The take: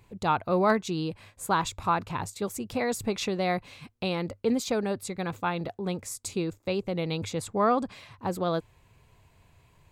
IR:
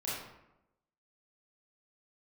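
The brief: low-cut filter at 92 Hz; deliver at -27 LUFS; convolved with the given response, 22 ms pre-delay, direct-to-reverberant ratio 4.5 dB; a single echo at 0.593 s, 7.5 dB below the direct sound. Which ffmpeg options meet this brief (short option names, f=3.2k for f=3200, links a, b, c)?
-filter_complex "[0:a]highpass=92,aecho=1:1:593:0.422,asplit=2[a][b];[1:a]atrim=start_sample=2205,adelay=22[c];[b][c]afir=irnorm=-1:irlink=0,volume=-8.5dB[d];[a][d]amix=inputs=2:normalize=0,volume=1dB"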